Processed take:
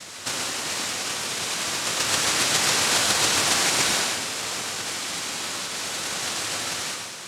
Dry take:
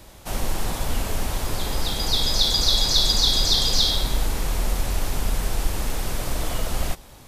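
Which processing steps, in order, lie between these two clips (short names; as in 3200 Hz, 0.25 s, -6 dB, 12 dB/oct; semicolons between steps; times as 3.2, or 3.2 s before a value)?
high shelf 5200 Hz +11 dB; compressor 5:1, threshold -29 dBFS, peak gain reduction 16 dB; noise vocoder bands 1; reverb RT60 1.0 s, pre-delay 82 ms, DRR 1 dB; gain +7.5 dB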